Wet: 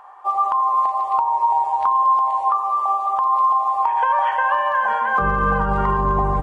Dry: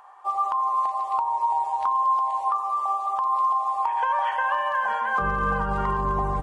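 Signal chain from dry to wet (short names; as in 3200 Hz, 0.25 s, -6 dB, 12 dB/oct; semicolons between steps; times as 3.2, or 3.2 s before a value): high shelf 3100 Hz -9 dB; gain +6.5 dB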